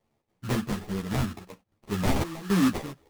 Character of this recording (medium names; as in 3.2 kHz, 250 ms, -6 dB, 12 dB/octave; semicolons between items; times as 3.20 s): random-step tremolo 3.6 Hz, depth 80%; aliases and images of a low sample rate 1.5 kHz, jitter 20%; a shimmering, thickened sound